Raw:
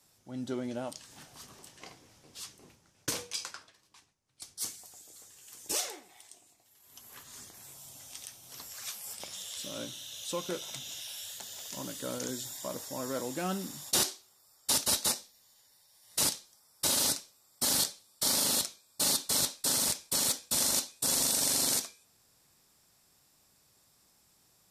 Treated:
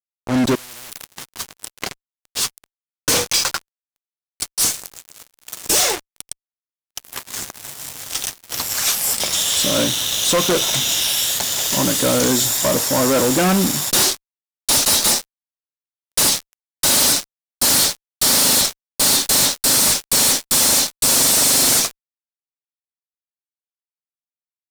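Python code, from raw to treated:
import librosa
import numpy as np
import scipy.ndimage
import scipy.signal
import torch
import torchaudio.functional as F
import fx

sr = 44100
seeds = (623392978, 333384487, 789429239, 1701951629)

y = fx.fuzz(x, sr, gain_db=45.0, gate_db=-46.0)
y = fx.spectral_comp(y, sr, ratio=10.0, at=(0.55, 1.08))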